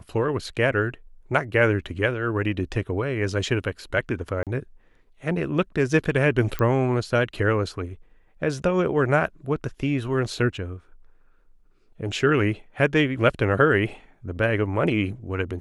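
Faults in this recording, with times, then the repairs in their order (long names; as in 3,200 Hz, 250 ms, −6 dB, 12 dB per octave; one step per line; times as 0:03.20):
0:04.43–0:04.47: drop-out 37 ms
0:06.59: click −13 dBFS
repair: click removal
repair the gap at 0:04.43, 37 ms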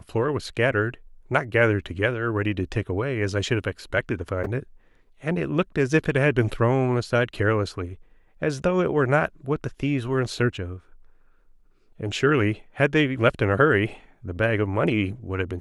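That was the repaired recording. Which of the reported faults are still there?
0:06.59: click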